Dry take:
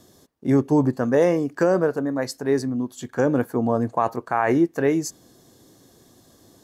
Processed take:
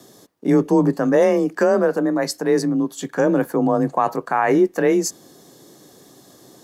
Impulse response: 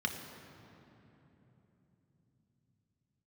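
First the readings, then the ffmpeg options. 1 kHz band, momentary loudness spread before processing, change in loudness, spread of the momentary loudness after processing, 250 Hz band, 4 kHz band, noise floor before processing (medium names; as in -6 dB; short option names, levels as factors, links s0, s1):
+3.5 dB, 7 LU, +3.0 dB, 6 LU, +3.0 dB, +6.0 dB, -56 dBFS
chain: -filter_complex "[0:a]lowshelf=f=69:g=-12,asplit=2[s0][s1];[s1]alimiter=limit=0.112:level=0:latency=1:release=27,volume=1.12[s2];[s0][s2]amix=inputs=2:normalize=0,afreqshift=28"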